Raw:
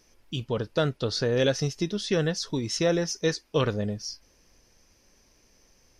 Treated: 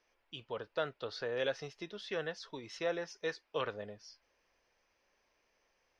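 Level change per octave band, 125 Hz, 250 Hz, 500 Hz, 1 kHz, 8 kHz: -23.0 dB, -19.0 dB, -11.0 dB, -7.0 dB, -21.0 dB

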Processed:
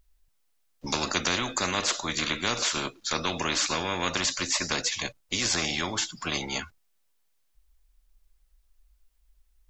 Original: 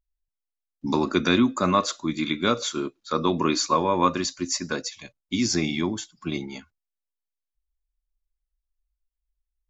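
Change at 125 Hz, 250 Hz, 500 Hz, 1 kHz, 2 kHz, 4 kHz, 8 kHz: -6.0 dB, -11.0 dB, -7.5 dB, -6.0 dB, +2.5 dB, +2.5 dB, no reading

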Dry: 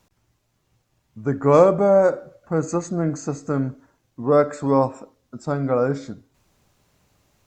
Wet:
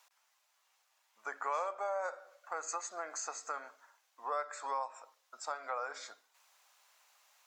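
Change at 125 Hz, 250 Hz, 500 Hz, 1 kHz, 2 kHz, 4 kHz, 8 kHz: under -40 dB, under -40 dB, -24.0 dB, -11.5 dB, -8.0 dB, no reading, -3.5 dB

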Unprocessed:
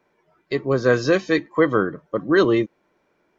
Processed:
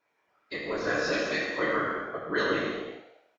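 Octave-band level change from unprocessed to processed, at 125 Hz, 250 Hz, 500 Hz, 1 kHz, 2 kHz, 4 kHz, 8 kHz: -16.0 dB, -13.0 dB, -11.0 dB, -4.5 dB, -3.5 dB, -2.5 dB, no reading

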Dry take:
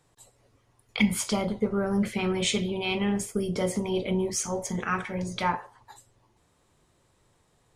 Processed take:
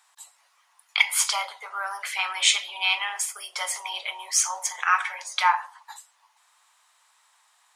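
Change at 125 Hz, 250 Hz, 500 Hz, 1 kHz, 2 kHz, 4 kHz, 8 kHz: under -40 dB, under -40 dB, -17.5 dB, +6.5 dB, +8.5 dB, +8.5 dB, +8.5 dB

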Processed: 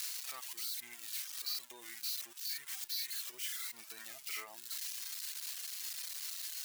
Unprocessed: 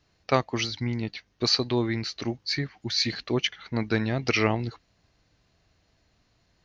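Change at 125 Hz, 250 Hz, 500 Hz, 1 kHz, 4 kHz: under -40 dB, -38.5 dB, -33.0 dB, -22.5 dB, -12.0 dB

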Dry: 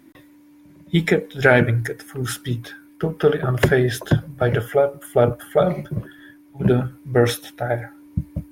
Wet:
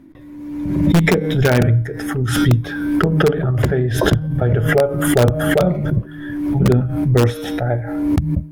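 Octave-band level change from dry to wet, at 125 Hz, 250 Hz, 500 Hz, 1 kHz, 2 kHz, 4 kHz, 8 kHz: +7.0 dB, +7.0 dB, +1.0 dB, +2.0 dB, +0.5 dB, +4.0 dB, +5.0 dB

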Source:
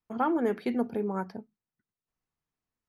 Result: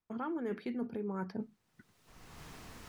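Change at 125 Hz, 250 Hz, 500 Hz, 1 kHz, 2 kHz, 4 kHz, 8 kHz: -3.5 dB, -7.5 dB, -9.0 dB, -12.0 dB, -7.0 dB, -2.5 dB, no reading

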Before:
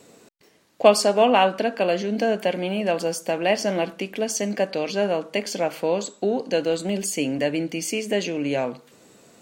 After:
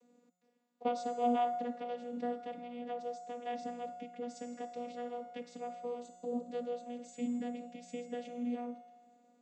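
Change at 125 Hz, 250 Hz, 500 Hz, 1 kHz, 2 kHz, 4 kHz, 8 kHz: under -25 dB, -13.0 dB, -18.5 dB, -11.5 dB, -24.5 dB, -25.5 dB, -27.5 dB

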